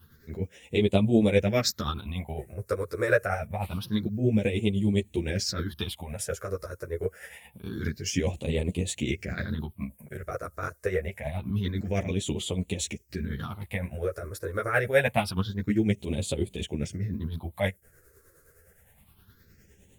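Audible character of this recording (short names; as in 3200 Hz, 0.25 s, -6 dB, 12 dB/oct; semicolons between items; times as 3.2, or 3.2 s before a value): phasing stages 6, 0.26 Hz, lowest notch 210–1500 Hz; tremolo triangle 9.7 Hz, depth 60%; a shimmering, thickened sound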